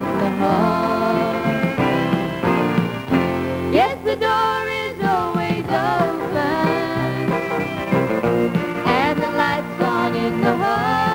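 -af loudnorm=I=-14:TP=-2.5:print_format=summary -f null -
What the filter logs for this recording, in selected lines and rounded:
Input Integrated:    -19.4 LUFS
Input True Peak:      -2.1 dBTP
Input LRA:             1.0 LU
Input Threshold:     -29.4 LUFS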